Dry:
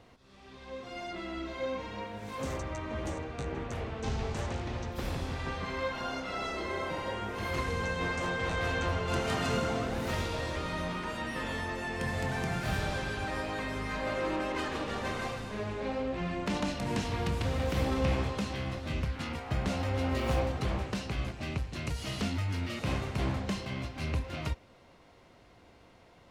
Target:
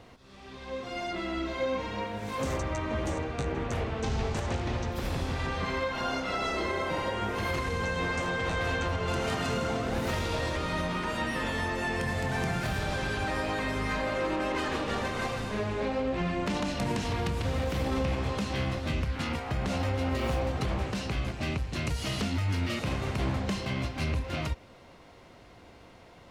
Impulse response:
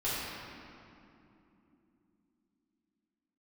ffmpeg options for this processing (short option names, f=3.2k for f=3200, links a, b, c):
-af "alimiter=level_in=2.5dB:limit=-24dB:level=0:latency=1:release=132,volume=-2.5dB,volume=5.5dB"